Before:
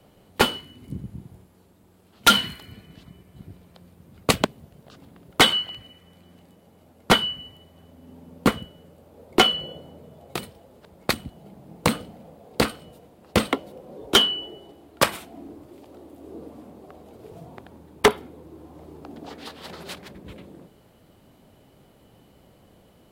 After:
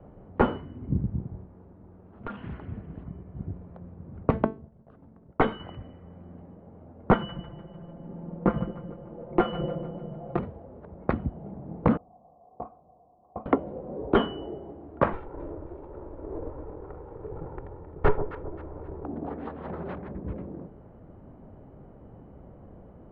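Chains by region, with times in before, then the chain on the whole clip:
1.19–3.08 s: compression 8:1, threshold -35 dBFS + loudspeaker Doppler distortion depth 0.43 ms
4.30–5.60 s: hum notches 50/100/150/200/250/300/350/400/450 Hz + expander -47 dBFS + feedback comb 220 Hz, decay 0.28 s
7.14–10.39 s: compression 2.5:1, threshold -28 dBFS + comb 5.8 ms, depth 87% + two-band feedback delay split 490 Hz, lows 216 ms, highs 149 ms, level -14.5 dB
11.97–13.46 s: companding laws mixed up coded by mu + cascade formant filter a + peaking EQ 1 kHz -9 dB 1.9 oct
15.13–19.04 s: comb filter that takes the minimum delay 2.2 ms + integer overflow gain 13.5 dB + echo whose repeats swap between lows and highs 132 ms, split 940 Hz, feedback 60%, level -10 dB
whole clip: Bessel low-pass 1 kHz, order 4; bass shelf 66 Hz +9.5 dB; loudness maximiser +13.5 dB; trim -8 dB

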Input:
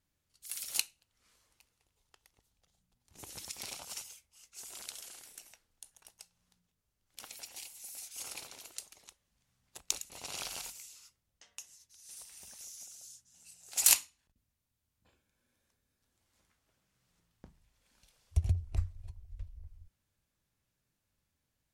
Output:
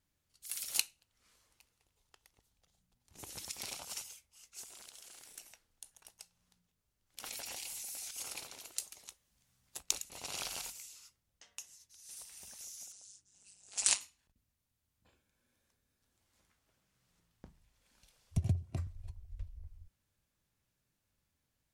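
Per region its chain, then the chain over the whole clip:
4.63–5.38 s: peaking EQ 13 kHz -6.5 dB 0.24 oct + waveshaping leveller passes 1 + compression, threshold -50 dBFS
7.24–8.11 s: peaking EQ 14 kHz -3 dB 0.96 oct + level flattener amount 100%
8.77–9.83 s: treble shelf 4.7 kHz +6.5 dB + doubling 15 ms -13 dB
12.92–14.01 s: steep low-pass 10 kHz 96 dB/octave + AM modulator 200 Hz, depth 75%
18.37–18.87 s: high-pass 130 Hz 24 dB/octave + bass shelf 440 Hz +12 dB + comb of notches 430 Hz
whole clip: none

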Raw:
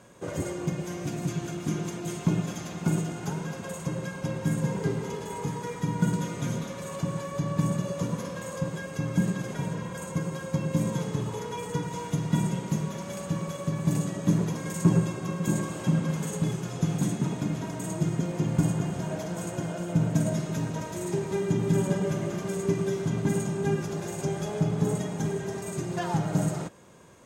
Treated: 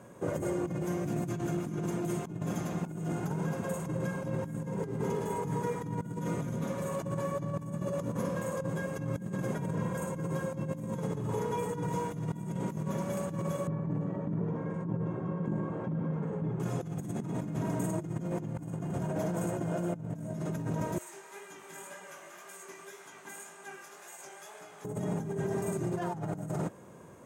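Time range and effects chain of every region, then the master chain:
13.67–16.60 s: low-pass 1.6 kHz + feedback comb 460 Hz, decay 0.38 s, mix 80% + level flattener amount 50%
20.98–24.85 s: high-pass 1.4 kHz + chorus 1.9 Hz, delay 16 ms, depth 7.9 ms
whole clip: high-pass 80 Hz; peaking EQ 4.2 kHz -12 dB 2.1 oct; compressor with a negative ratio -34 dBFS, ratio -1

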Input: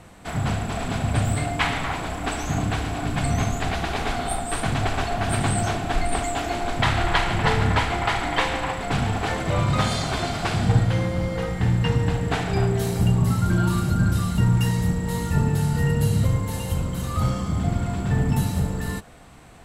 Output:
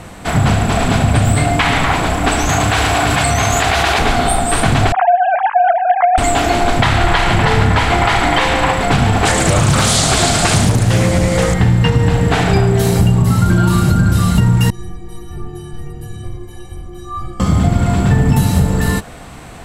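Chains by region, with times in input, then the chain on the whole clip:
2.49–3.99 s: high-pass 76 Hz + peaking EQ 190 Hz -12.5 dB 2.1 oct + level flattener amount 100%
4.92–6.18 s: formants replaced by sine waves + low-pass 1.2 kHz + hum notches 60/120/180/240/300/360/420/480/540 Hz
9.25–11.54 s: peaking EQ 8.3 kHz +14 dB 1.2 oct + band-stop 1 kHz, Q 16 + loudspeaker Doppler distortion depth 0.97 ms
14.70–17.40 s: tilt EQ -2 dB/octave + inharmonic resonator 350 Hz, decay 0.34 s, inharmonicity 0.03
whole clip: compression, threshold -21 dBFS; loudness maximiser +14.5 dB; trim -1 dB

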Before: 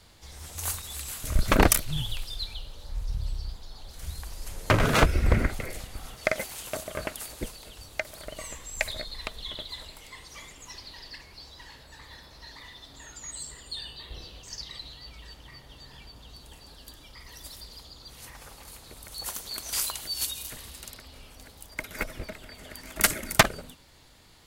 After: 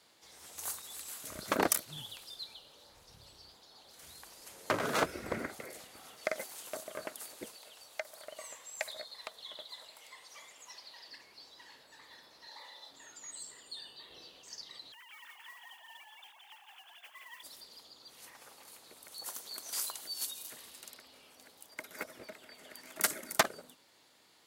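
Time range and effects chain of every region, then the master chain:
7.56–11.08 s: resonant low shelf 450 Hz -6 dB, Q 1.5 + tape noise reduction on one side only encoder only
12.48–12.91 s: bass shelf 410 Hz -11 dB + doubling 31 ms -6 dB + small resonant body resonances 560/840/4000 Hz, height 13 dB, ringing for 30 ms
14.92–17.43 s: formants replaced by sine waves + frequency-shifting echo 171 ms, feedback 35%, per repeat -68 Hz, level -4 dB + modulation noise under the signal 12 dB
whole clip: high-pass 280 Hz 12 dB/octave; dynamic bell 2.6 kHz, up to -5 dB, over -47 dBFS, Q 1.6; trim -7 dB

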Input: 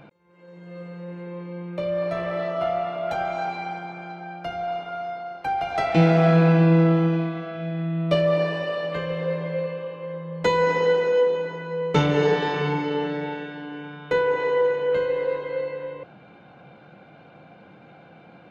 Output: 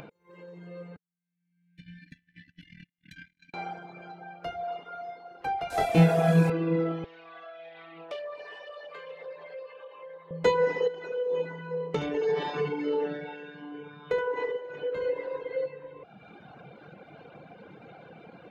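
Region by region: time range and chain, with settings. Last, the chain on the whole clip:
0.96–3.54 s: gate -24 dBFS, range -50 dB + compressor with a negative ratio -36 dBFS + brick-wall FIR band-stop 310–1500 Hz
5.70–6.50 s: one-bit delta coder 64 kbps, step -32.5 dBFS + bass shelf 90 Hz +7.5 dB + doubling 23 ms -4 dB
7.04–10.31 s: Chebyshev high-pass 740 Hz + compression 2:1, threshold -36 dBFS + loudspeaker Doppler distortion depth 0.15 ms
10.87–15.66 s: compression 12:1, threshold -21 dBFS + delay 72 ms -6.5 dB
whole clip: reverb removal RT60 1.5 s; peaking EQ 450 Hz +7 dB 0.33 oct; upward compressor, threshold -36 dBFS; trim -4.5 dB

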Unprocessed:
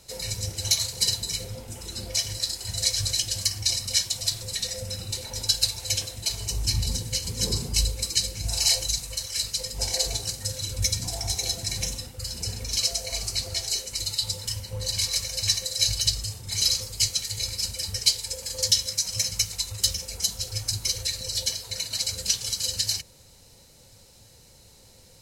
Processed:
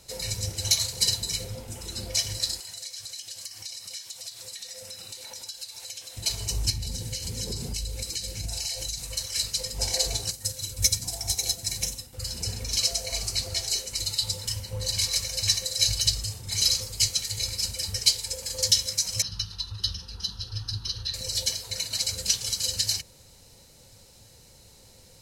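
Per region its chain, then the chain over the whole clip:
2.60–6.17 s: high-pass 850 Hz 6 dB/octave + compression 4:1, threshold -37 dBFS
6.70–9.01 s: compression, threshold -28 dBFS + peaking EQ 1.1 kHz -5.5 dB 0.4 oct
10.31–12.13 s: treble shelf 7.4 kHz +10 dB + upward expansion, over -38 dBFS
19.22–21.14 s: low-pass 5.4 kHz + static phaser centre 2.2 kHz, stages 6
whole clip: none

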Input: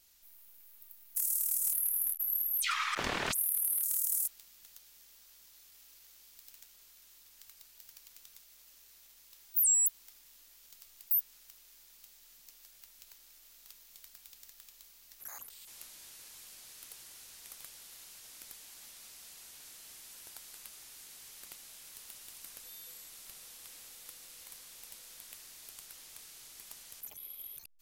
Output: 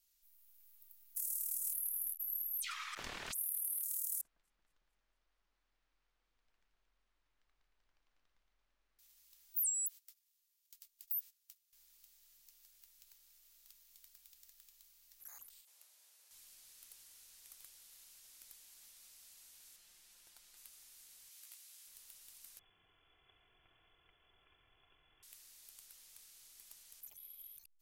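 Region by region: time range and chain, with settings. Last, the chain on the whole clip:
4.21–8.99 s: low-pass 1.4 kHz + echo whose repeats swap between lows and highs 113 ms, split 1.9 kHz, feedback 77%, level -4 dB
9.69–11.73 s: gate -57 dBFS, range -19 dB + tilt shelf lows -6 dB, about 870 Hz + compression 12:1, threshold -27 dBFS
15.61–16.31 s: high-pass 520 Hz 24 dB/octave + tilt shelf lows +6.5 dB, about 720 Hz
19.76–20.57 s: treble shelf 7.1 kHz -9 dB + comb 5.7 ms, depth 42%
21.29–21.87 s: high-pass 1.2 kHz 6 dB/octave + doubling 17 ms -3.5 dB
22.59–25.23 s: band-stop 1.5 kHz, Q 18 + comb 3 ms, depth 55% + frequency inversion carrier 3.4 kHz
whole clip: tilt EQ -4 dB/octave; level rider gain up to 3.5 dB; pre-emphasis filter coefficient 0.97

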